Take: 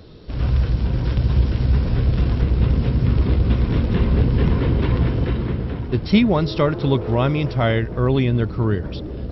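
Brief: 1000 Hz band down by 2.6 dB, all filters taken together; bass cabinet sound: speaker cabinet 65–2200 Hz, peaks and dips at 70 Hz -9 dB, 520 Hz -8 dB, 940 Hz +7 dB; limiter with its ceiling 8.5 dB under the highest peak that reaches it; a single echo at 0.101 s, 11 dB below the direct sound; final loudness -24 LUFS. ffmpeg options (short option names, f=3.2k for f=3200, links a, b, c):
-af "equalizer=f=1k:t=o:g=-7,alimiter=limit=-12.5dB:level=0:latency=1,highpass=f=65:w=0.5412,highpass=f=65:w=1.3066,equalizer=f=70:t=q:w=4:g=-9,equalizer=f=520:t=q:w=4:g=-8,equalizer=f=940:t=q:w=4:g=7,lowpass=f=2.2k:w=0.5412,lowpass=f=2.2k:w=1.3066,aecho=1:1:101:0.282,volume=0.5dB"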